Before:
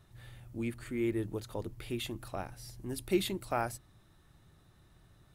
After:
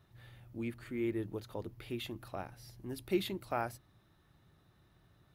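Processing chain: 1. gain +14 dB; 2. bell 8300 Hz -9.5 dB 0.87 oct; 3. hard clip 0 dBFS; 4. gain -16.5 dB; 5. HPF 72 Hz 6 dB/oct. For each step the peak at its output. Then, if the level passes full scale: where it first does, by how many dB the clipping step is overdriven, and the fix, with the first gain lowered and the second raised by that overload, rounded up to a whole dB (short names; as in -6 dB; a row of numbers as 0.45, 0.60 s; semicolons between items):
-3.5, -3.5, -3.5, -20.0, -21.0 dBFS; no overload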